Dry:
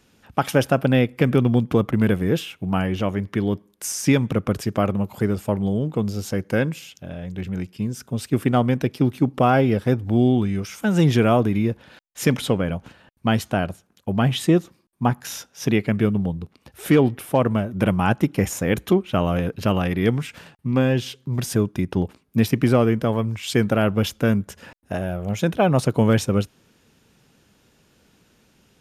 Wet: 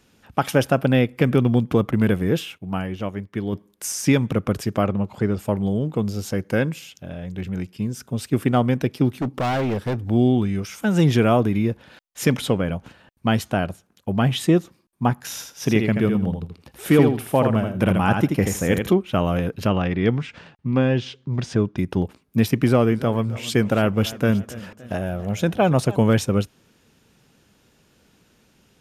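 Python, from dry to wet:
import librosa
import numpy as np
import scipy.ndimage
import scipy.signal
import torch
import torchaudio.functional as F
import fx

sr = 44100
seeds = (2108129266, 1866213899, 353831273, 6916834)

y = fx.upward_expand(x, sr, threshold_db=-37.0, expansion=1.5, at=(2.57, 3.52), fade=0.02)
y = fx.air_absorb(y, sr, metres=71.0, at=(4.84, 5.38), fade=0.02)
y = fx.clip_hard(y, sr, threshold_db=-20.0, at=(9.16, 10.05))
y = fx.echo_feedback(y, sr, ms=81, feedback_pct=16, wet_db=-5.5, at=(15.36, 18.89), fade=0.02)
y = fx.bessel_lowpass(y, sr, hz=4400.0, order=4, at=(19.67, 21.78))
y = fx.echo_warbled(y, sr, ms=282, feedback_pct=50, rate_hz=2.8, cents=104, wet_db=-18, at=(22.55, 25.96))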